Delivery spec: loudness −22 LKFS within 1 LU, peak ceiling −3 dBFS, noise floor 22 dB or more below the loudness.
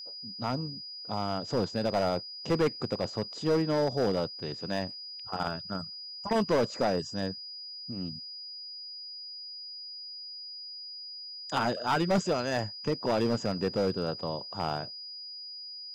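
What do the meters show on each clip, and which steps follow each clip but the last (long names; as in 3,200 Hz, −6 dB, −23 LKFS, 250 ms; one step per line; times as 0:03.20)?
share of clipped samples 1.2%; peaks flattened at −21.0 dBFS; interfering tone 4,900 Hz; level of the tone −40 dBFS; integrated loudness −32.0 LKFS; sample peak −21.0 dBFS; target loudness −22.0 LKFS
→ clipped peaks rebuilt −21 dBFS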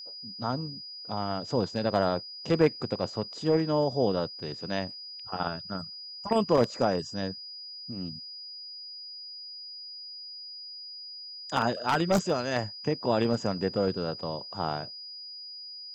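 share of clipped samples 0.0%; interfering tone 4,900 Hz; level of the tone −40 dBFS
→ notch filter 4,900 Hz, Q 30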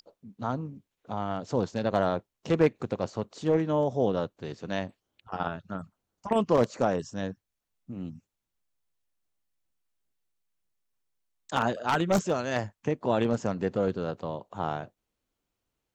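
interfering tone none found; integrated loudness −29.5 LKFS; sample peak −11.5 dBFS; target loudness −22.0 LKFS
→ level +7.5 dB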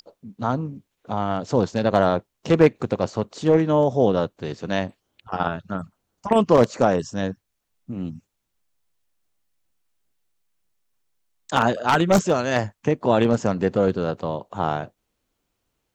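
integrated loudness −22.0 LKFS; sample peak −4.0 dBFS; background noise floor −77 dBFS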